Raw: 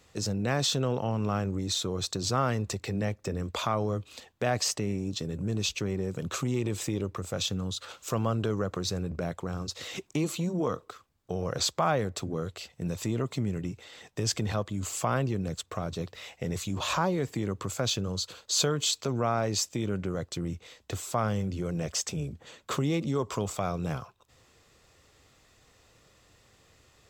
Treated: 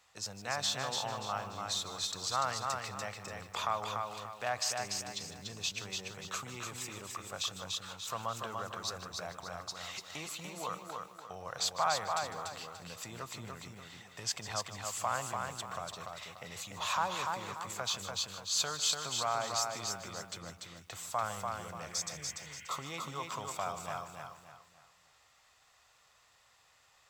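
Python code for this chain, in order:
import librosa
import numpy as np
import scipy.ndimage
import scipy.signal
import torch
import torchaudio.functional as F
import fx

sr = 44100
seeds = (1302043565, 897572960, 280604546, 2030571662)

y = fx.low_shelf_res(x, sr, hz=550.0, db=-13.5, q=1.5)
y = fx.spec_repair(y, sr, seeds[0], start_s=21.93, length_s=0.85, low_hz=1400.0, high_hz=3300.0, source='both')
y = fx.echo_feedback(y, sr, ms=291, feedback_pct=35, wet_db=-4.0)
y = fx.echo_crushed(y, sr, ms=153, feedback_pct=35, bits=8, wet_db=-13.5)
y = F.gain(torch.from_numpy(y), -5.0).numpy()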